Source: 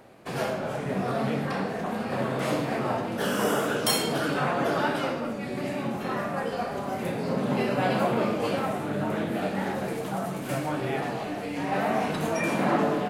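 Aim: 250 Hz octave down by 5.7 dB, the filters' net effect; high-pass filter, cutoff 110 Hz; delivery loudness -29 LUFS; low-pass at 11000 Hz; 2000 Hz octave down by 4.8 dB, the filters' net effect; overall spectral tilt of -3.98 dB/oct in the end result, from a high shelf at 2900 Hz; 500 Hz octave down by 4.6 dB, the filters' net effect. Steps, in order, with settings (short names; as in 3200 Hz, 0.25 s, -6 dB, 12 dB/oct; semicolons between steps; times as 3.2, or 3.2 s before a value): HPF 110 Hz; LPF 11000 Hz; bell 250 Hz -6 dB; bell 500 Hz -4 dB; bell 2000 Hz -8 dB; high shelf 2900 Hz +4.5 dB; gain +2.5 dB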